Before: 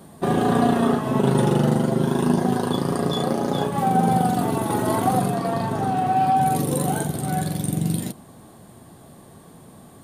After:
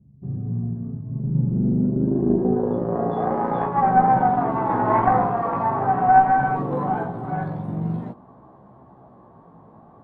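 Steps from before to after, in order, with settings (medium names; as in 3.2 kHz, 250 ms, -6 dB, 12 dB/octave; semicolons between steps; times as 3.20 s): dynamic bell 1.8 kHz, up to +7 dB, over -39 dBFS, Q 0.79; low-pass sweep 120 Hz -> 1 kHz, 1.13–3.42 s; 4.52–6.26 s: flutter echo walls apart 9.1 m, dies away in 0.48 s; Chebyshev shaper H 2 -13 dB, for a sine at -2 dBFS; chorus 0.46 Hz, delay 15 ms, depth 3.4 ms; trim -1 dB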